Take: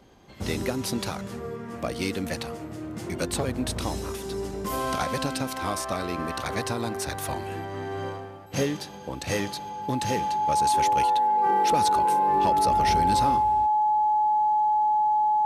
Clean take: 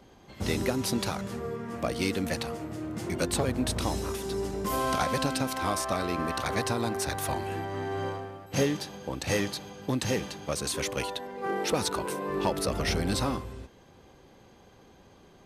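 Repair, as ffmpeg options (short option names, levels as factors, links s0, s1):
-af "bandreject=f=850:w=30"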